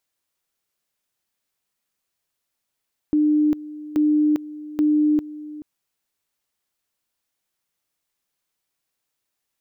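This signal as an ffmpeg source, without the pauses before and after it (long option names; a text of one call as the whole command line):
ffmpeg -f lavfi -i "aevalsrc='pow(10,(-14.5-17.5*gte(mod(t,0.83),0.4))/20)*sin(2*PI*301*t)':duration=2.49:sample_rate=44100" out.wav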